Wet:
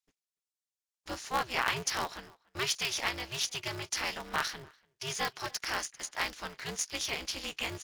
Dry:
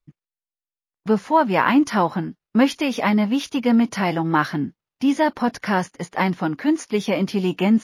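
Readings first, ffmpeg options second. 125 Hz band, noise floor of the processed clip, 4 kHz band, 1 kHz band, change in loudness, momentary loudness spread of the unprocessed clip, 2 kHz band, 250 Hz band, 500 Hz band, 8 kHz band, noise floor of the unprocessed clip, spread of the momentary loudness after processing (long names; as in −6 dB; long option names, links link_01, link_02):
−19.0 dB, below −85 dBFS, −1.0 dB, −14.5 dB, −13.0 dB, 7 LU, −8.0 dB, −29.0 dB, −18.5 dB, +3.5 dB, below −85 dBFS, 11 LU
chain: -filter_complex "[0:a]bandpass=frequency=6500:width_type=q:width=1.1:csg=0,asplit=2[link_01][link_02];[link_02]adelay=290,highpass=300,lowpass=3400,asoftclip=type=hard:threshold=-28dB,volume=-25dB[link_03];[link_01][link_03]amix=inputs=2:normalize=0,aeval=exprs='val(0)*sgn(sin(2*PI*130*n/s))':channel_layout=same,volume=4dB"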